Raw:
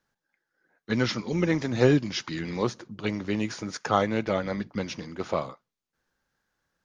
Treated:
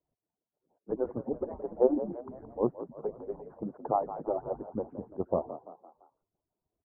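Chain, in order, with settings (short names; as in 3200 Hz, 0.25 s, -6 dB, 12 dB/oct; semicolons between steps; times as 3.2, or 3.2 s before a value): median-filter separation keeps percussive; steep low-pass 900 Hz 36 dB/oct; on a send: frequency-shifting echo 0.17 s, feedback 45%, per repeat +49 Hz, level -13 dB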